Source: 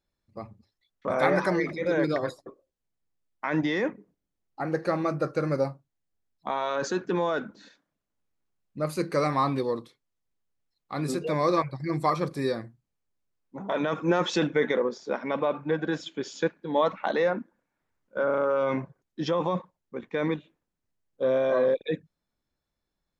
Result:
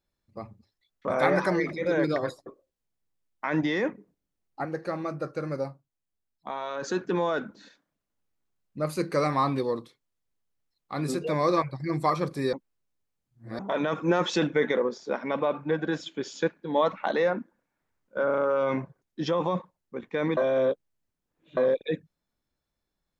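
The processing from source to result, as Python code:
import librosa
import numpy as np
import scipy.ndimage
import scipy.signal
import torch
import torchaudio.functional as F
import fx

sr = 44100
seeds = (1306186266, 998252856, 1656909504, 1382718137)

y = fx.edit(x, sr, fx.clip_gain(start_s=4.65, length_s=2.23, db=-5.0),
    fx.reverse_span(start_s=12.53, length_s=1.06),
    fx.reverse_span(start_s=20.37, length_s=1.2), tone=tone)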